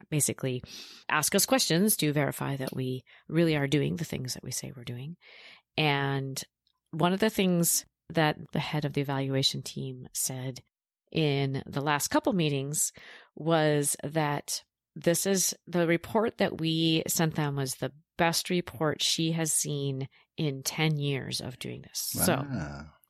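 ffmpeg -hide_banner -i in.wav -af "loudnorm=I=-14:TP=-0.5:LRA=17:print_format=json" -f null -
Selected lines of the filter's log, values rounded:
"input_i" : "-28.8",
"input_tp" : "-10.9",
"input_lra" : "3.5",
"input_thresh" : "-39.2",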